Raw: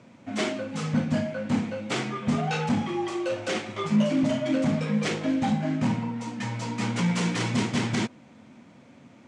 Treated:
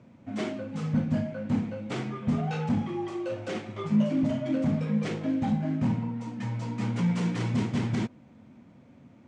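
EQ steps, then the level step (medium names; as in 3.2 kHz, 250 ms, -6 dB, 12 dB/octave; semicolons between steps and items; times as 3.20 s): tilt EQ -2 dB/octave; bass shelf 62 Hz +7.5 dB; -6.5 dB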